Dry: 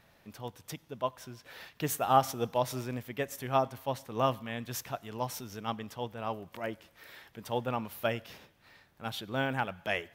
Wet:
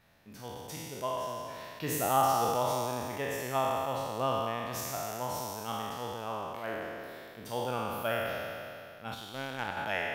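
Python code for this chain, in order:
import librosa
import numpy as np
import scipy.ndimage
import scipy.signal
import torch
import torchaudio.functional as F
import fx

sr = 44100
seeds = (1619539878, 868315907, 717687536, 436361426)

y = fx.spec_trails(x, sr, decay_s=2.57)
y = fx.power_curve(y, sr, exponent=1.4, at=(9.14, 9.77))
y = y * librosa.db_to_amplitude(-5.0)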